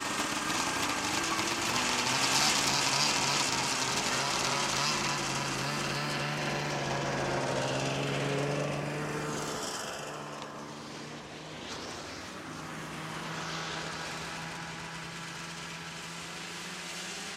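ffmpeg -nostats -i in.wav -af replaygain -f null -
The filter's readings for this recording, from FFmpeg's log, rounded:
track_gain = +11.3 dB
track_peak = 0.172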